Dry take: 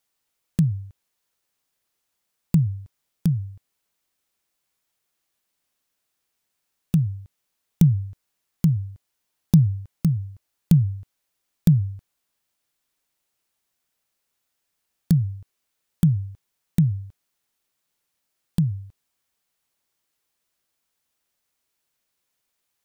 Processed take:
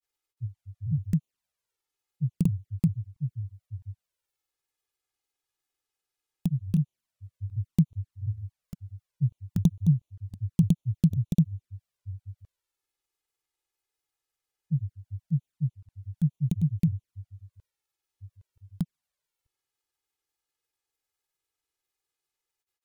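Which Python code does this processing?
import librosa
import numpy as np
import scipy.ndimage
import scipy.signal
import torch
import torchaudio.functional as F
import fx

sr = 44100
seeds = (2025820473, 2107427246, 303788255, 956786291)

y = fx.granulator(x, sr, seeds[0], grain_ms=100.0, per_s=20.0, spray_ms=561.0, spread_st=0)
y = fx.env_flanger(y, sr, rest_ms=2.4, full_db=-21.0)
y = F.gain(torch.from_numpy(y), -4.0).numpy()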